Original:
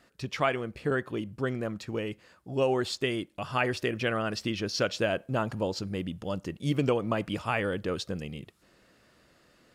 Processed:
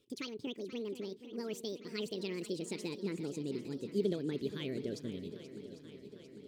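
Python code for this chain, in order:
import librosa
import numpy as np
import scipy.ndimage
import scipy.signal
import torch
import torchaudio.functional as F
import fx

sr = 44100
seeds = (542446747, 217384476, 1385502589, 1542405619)

y = fx.speed_glide(x, sr, from_pct=196, to_pct=105)
y = fx.curve_eq(y, sr, hz=(160.0, 430.0, 750.0, 3300.0, 6800.0), db=(0, 5, -25, -4, -8))
y = fx.echo_swing(y, sr, ms=799, ratio=1.5, feedback_pct=59, wet_db=-13)
y = F.gain(torch.from_numpy(y), -7.0).numpy()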